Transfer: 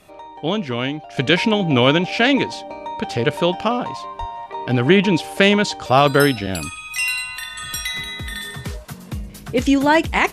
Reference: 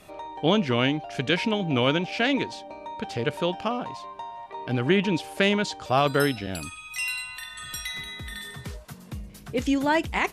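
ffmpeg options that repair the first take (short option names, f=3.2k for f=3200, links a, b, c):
-filter_complex "[0:a]asplit=3[a][b][c];[a]afade=t=out:st=4.19:d=0.02[d];[b]highpass=f=140:w=0.5412,highpass=f=140:w=1.3066,afade=t=in:st=4.19:d=0.02,afade=t=out:st=4.31:d=0.02[e];[c]afade=t=in:st=4.31:d=0.02[f];[d][e][f]amix=inputs=3:normalize=0,asetnsamples=n=441:p=0,asendcmd='1.17 volume volume -8dB',volume=0dB"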